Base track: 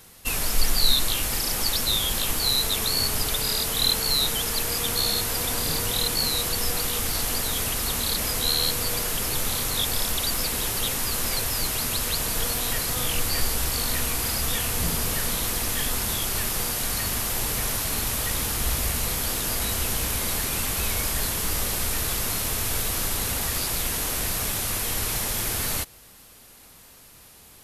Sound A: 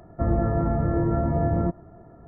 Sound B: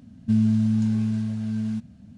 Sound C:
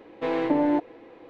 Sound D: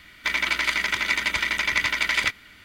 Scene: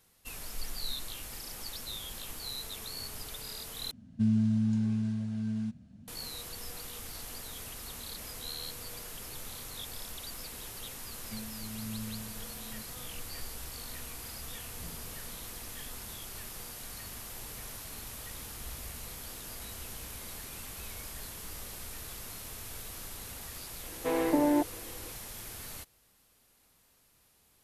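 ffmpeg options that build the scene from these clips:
-filter_complex "[2:a]asplit=2[a][b];[0:a]volume=-17dB[c];[b]tremolo=f=1:d=0.69[d];[c]asplit=2[e][f];[e]atrim=end=3.914[g];[a]atrim=end=2.17,asetpts=PTS-STARTPTS,volume=-6.5dB[h];[f]atrim=start=6.076[i];[d]atrim=end=2.17,asetpts=PTS-STARTPTS,volume=-16.5dB,afade=t=in:d=0.004:c=hsin,afade=t=out:st=2.166:d=0.004:c=hsin,adelay=11030[j];[3:a]atrim=end=1.29,asetpts=PTS-STARTPTS,volume=-3.5dB,afade=t=in:d=0.004:c=hsin,afade=t=out:st=1.286:d=0.004:c=hsin,adelay=23830[k];[g][h]acrossfade=d=0.004:c1=hsin:c2=hsin[l];[l][i]acrossfade=d=0.004:c1=hsin:c2=hsin[m];[m][j][k]amix=inputs=3:normalize=0"

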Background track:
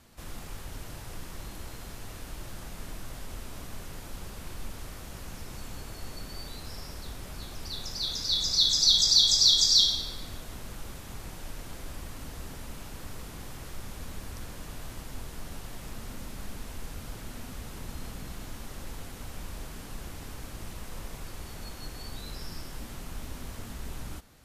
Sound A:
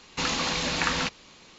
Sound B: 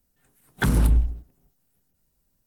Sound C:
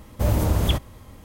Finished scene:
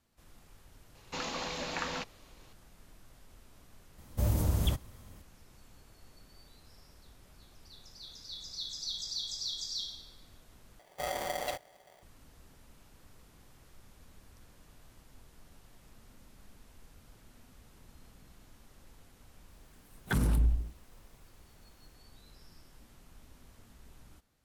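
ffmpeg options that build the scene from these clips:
-filter_complex "[3:a]asplit=2[a][b];[0:a]volume=-17dB[c];[1:a]equalizer=f=610:w=0.88:g=7[d];[a]bass=f=250:g=5,treble=f=4k:g=7[e];[b]aeval=exprs='val(0)*sgn(sin(2*PI*660*n/s))':c=same[f];[2:a]alimiter=limit=-16.5dB:level=0:latency=1:release=58[g];[c]asplit=2[h][i];[h]atrim=end=10.794[j];[f]atrim=end=1.24,asetpts=PTS-STARTPTS,volume=-16dB[k];[i]atrim=start=12.026[l];[d]atrim=end=1.58,asetpts=PTS-STARTPTS,volume=-12dB,afade=t=in:d=0.004:c=hsin,afade=t=out:st=1.576:d=0.004:c=hsin,adelay=950[m];[e]atrim=end=1.24,asetpts=PTS-STARTPTS,volume=-12.5dB,afade=t=in:d=0.004:c=hsin,afade=t=out:st=1.236:d=0.004:c=hsin,adelay=3980[n];[g]atrim=end=2.46,asetpts=PTS-STARTPTS,volume=-3.5dB,afade=t=in:d=0.004:c=hsin,afade=t=out:st=2.456:d=0.004:c=hsin,adelay=19490[o];[j][k]acrossfade=d=0.004:c1=hsin:c2=hsin[p];[p][l]acrossfade=d=0.004:c1=hsin:c2=hsin[q];[q][m][n][o]amix=inputs=4:normalize=0"

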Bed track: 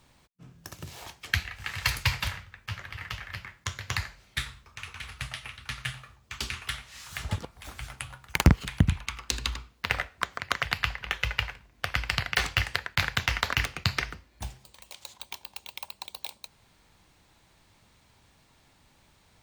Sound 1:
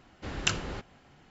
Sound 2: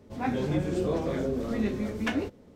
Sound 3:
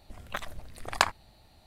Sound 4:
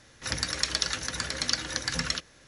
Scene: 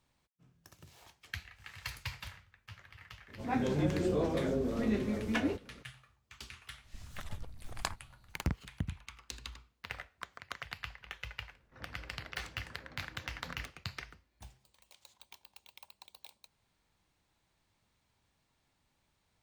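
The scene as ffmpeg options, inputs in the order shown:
-filter_complex "[0:a]volume=-15dB[a];[3:a]bass=f=250:g=13,treble=f=4k:g=6[b];[4:a]lowpass=1.2k[c];[2:a]atrim=end=2.55,asetpts=PTS-STARTPTS,volume=-3dB,afade=t=in:d=0.004:c=hsin,afade=t=out:st=2.546:d=0.004:c=hsin,adelay=3280[d];[b]atrim=end=1.66,asetpts=PTS-STARTPTS,volume=-14.5dB,afade=t=in:d=0.004:c=hsin,afade=t=out:st=1.656:d=0.004:c=hsin,adelay=6840[e];[c]atrim=end=2.47,asetpts=PTS-STARTPTS,volume=-15dB,afade=t=in:d=0.004:c=hsin,afade=t=out:st=2.466:d=0.004:c=hsin,adelay=11500[f];[a][d][e][f]amix=inputs=4:normalize=0"

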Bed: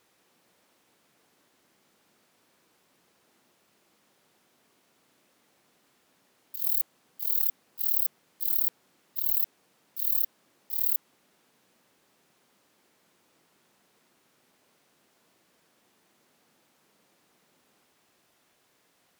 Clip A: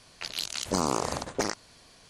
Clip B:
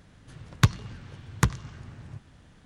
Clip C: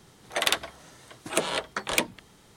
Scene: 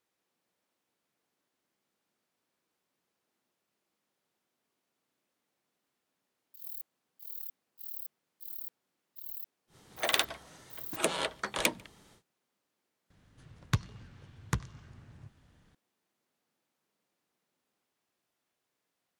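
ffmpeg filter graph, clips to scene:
-filter_complex "[0:a]volume=-16dB[a];[3:a]asplit=2[b][c];[c]adelay=145.8,volume=-28dB,highshelf=f=4k:g=-3.28[d];[b][d]amix=inputs=2:normalize=0,atrim=end=2.56,asetpts=PTS-STARTPTS,volume=-4dB,afade=t=in:d=0.1,afade=t=out:st=2.46:d=0.1,adelay=9670[e];[2:a]atrim=end=2.65,asetpts=PTS-STARTPTS,volume=-9.5dB,afade=t=in:d=0.004:c=hsin,afade=t=out:st=2.646:d=0.004:c=hsin,adelay=13100[f];[a][e][f]amix=inputs=3:normalize=0"

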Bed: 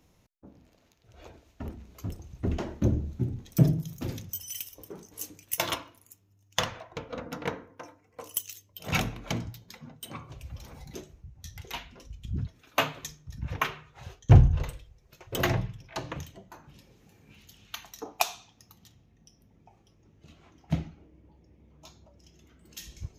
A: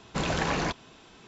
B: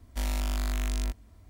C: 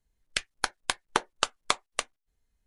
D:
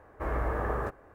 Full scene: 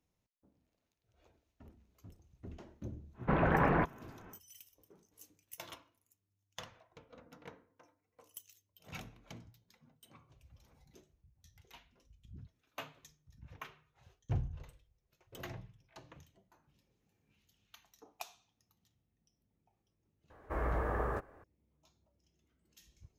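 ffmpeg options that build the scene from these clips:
-filter_complex "[0:a]volume=-19.5dB[a];[1:a]lowpass=f=1.9k:w=0.5412,lowpass=f=1.9k:w=1.3066,atrim=end=1.27,asetpts=PTS-STARTPTS,afade=t=in:d=0.1,afade=t=out:st=1.17:d=0.1,adelay=138033S[b];[4:a]atrim=end=1.14,asetpts=PTS-STARTPTS,volume=-4dB,afade=t=in:d=0.004:c=hsin,afade=t=out:st=1.136:d=0.004:c=hsin,adelay=20300[c];[a][b][c]amix=inputs=3:normalize=0"

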